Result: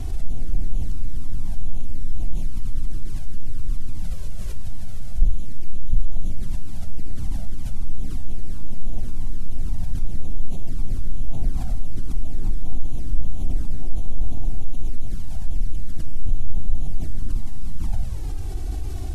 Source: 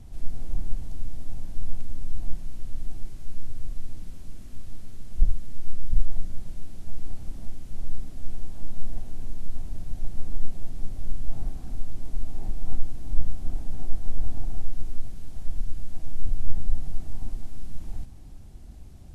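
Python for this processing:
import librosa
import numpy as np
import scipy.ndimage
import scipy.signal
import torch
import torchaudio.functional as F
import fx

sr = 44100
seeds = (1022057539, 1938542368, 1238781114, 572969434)

y = fx.env_flanger(x, sr, rest_ms=3.0, full_db=-13.5)
y = fx.env_flatten(y, sr, amount_pct=50)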